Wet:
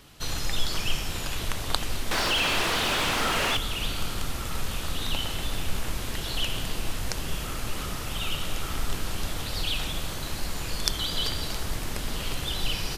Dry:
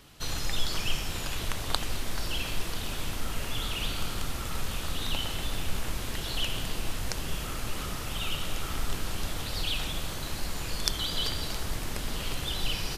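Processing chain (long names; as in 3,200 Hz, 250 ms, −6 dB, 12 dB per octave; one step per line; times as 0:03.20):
0:02.11–0:03.57: mid-hump overdrive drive 25 dB, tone 2,500 Hz, clips at −15.5 dBFS
level +2 dB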